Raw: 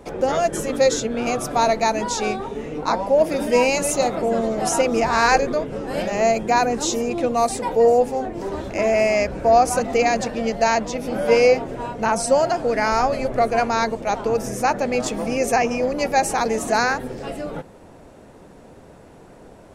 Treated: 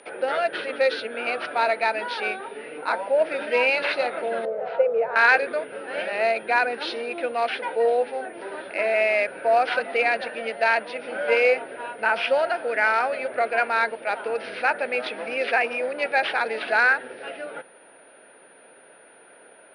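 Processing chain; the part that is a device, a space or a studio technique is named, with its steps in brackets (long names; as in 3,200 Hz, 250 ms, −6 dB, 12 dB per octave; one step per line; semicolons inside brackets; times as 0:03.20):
toy sound module (linearly interpolated sample-rate reduction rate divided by 4×; switching amplifier with a slow clock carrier 9,600 Hz; loudspeaker in its box 670–4,500 Hz, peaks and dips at 770 Hz −5 dB, 1,100 Hz −10 dB, 1,500 Hz +7 dB, 2,500 Hz +4 dB)
0:04.45–0:05.16: drawn EQ curve 180 Hz 0 dB, 320 Hz −21 dB, 460 Hz +8 dB, 750 Hz −4 dB, 5,100 Hz −26 dB
level +1.5 dB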